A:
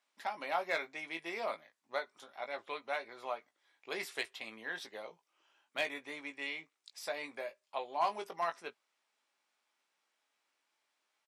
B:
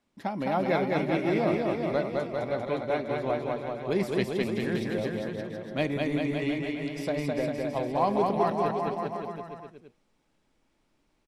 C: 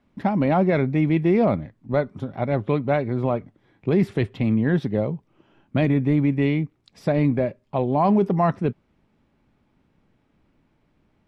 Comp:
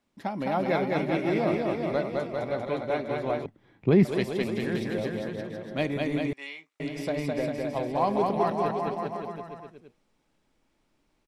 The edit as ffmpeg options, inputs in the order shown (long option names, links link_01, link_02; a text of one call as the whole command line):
ffmpeg -i take0.wav -i take1.wav -i take2.wav -filter_complex "[1:a]asplit=3[link_01][link_02][link_03];[link_01]atrim=end=3.462[link_04];[2:a]atrim=start=3.458:end=4.052[link_05];[link_02]atrim=start=4.048:end=6.332[link_06];[0:a]atrim=start=6.328:end=6.802[link_07];[link_03]atrim=start=6.798[link_08];[link_04][link_05]acrossfade=duration=0.004:curve1=hsin:curve2=hsin[link_09];[link_09][link_06]acrossfade=duration=0.004:curve1=hsin:curve2=hsin[link_10];[link_10][link_07]acrossfade=duration=0.004:curve1=hsin:curve2=hsin[link_11];[link_11][link_08]acrossfade=duration=0.004:curve1=hsin:curve2=hsin" out.wav